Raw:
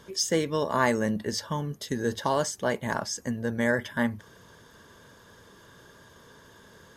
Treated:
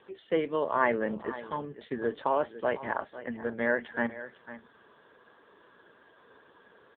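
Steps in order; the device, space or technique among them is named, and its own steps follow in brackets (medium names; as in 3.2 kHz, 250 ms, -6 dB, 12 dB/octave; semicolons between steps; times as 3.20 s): 0.74–1.54 s: gate with hold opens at -33 dBFS; satellite phone (band-pass 300–3100 Hz; delay 501 ms -14.5 dB; AMR-NB 5.9 kbps 8 kHz)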